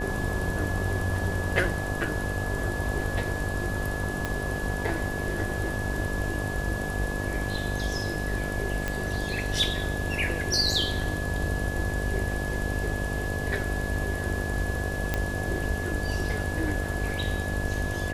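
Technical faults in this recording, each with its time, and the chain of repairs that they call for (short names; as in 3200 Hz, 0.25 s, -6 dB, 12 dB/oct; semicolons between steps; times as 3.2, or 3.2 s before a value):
buzz 50 Hz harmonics 15 -33 dBFS
tone 1700 Hz -34 dBFS
4.25 pop -14 dBFS
8.88 pop -14 dBFS
15.14 pop -11 dBFS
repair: de-click; notch 1700 Hz, Q 30; de-hum 50 Hz, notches 15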